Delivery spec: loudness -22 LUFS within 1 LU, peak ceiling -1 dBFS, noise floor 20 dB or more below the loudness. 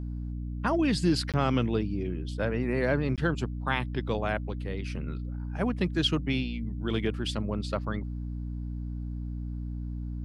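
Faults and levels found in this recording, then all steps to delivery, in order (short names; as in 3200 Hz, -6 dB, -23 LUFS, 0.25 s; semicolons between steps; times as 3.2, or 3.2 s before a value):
dropouts 2; longest dropout 17 ms; hum 60 Hz; harmonics up to 300 Hz; hum level -32 dBFS; loudness -30.5 LUFS; peak -12.5 dBFS; loudness target -22.0 LUFS
-> interpolate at 1.32/3.16, 17 ms; notches 60/120/180/240/300 Hz; gain +8.5 dB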